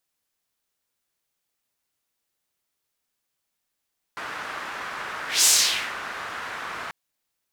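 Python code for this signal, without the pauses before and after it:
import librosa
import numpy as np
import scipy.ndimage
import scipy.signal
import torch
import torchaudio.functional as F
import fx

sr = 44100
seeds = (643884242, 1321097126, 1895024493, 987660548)

y = fx.whoosh(sr, seeds[0], length_s=2.74, peak_s=1.28, rise_s=0.19, fall_s=0.55, ends_hz=1400.0, peak_hz=7300.0, q=1.7, swell_db=18.0)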